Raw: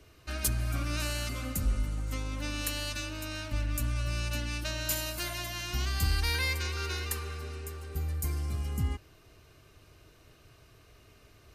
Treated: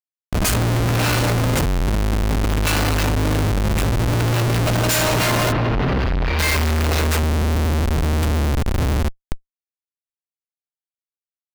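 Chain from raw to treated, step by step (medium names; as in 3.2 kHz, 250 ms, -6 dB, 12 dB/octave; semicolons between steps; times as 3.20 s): dynamic bell 7 kHz, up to +3 dB, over -53 dBFS, Q 3.5; two-slope reverb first 0.45 s, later 4.7 s, from -17 dB, DRR -9.5 dB; Schmitt trigger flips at -23.5 dBFS; 5.52–6.39 s: distance through air 300 m; trim +6.5 dB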